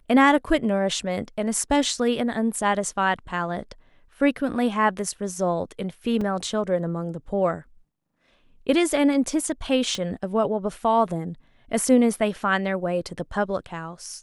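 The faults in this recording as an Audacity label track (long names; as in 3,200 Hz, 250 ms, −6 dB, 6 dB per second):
6.210000	6.210000	drop-out 3.8 ms
9.950000	9.950000	click −16 dBFS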